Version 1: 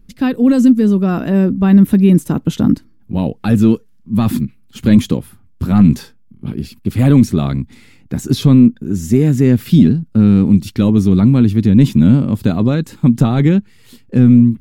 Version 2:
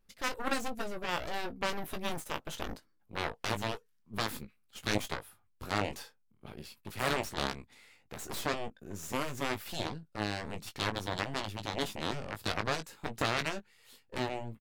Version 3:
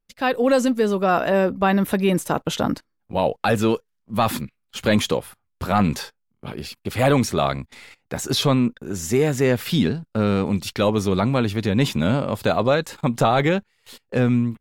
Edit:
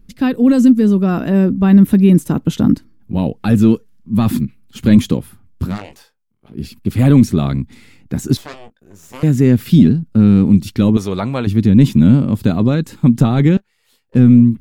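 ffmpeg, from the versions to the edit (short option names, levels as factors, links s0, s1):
-filter_complex "[1:a]asplit=3[s0][s1][s2];[0:a]asplit=5[s3][s4][s5][s6][s7];[s3]atrim=end=5.79[s8];[s0]atrim=start=5.63:end=6.64[s9];[s4]atrim=start=6.48:end=8.372[s10];[s1]atrim=start=8.368:end=9.232[s11];[s5]atrim=start=9.228:end=10.972[s12];[2:a]atrim=start=10.968:end=11.472[s13];[s6]atrim=start=11.468:end=13.572[s14];[s2]atrim=start=13.568:end=14.152[s15];[s7]atrim=start=14.148[s16];[s8][s9]acrossfade=d=0.16:c1=tri:c2=tri[s17];[s17][s10]acrossfade=d=0.16:c1=tri:c2=tri[s18];[s18][s11]acrossfade=d=0.004:c1=hsin:c2=hsin[s19];[s19][s12]acrossfade=d=0.004:c1=hsin:c2=hsin[s20];[s20][s13]acrossfade=d=0.004:c1=hsin:c2=hsin[s21];[s21][s14]acrossfade=d=0.004:c1=hsin:c2=hsin[s22];[s22][s15]acrossfade=d=0.004:c1=hsin:c2=hsin[s23];[s23][s16]acrossfade=d=0.004:c1=hsin:c2=hsin"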